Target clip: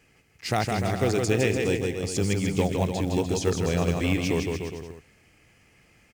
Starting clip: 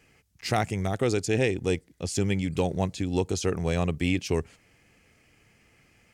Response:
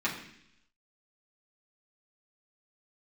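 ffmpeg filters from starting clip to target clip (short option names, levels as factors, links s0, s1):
-af "aecho=1:1:160|296|411.6|509.9|593.4:0.631|0.398|0.251|0.158|0.1,acrusher=bits=7:mode=log:mix=0:aa=0.000001"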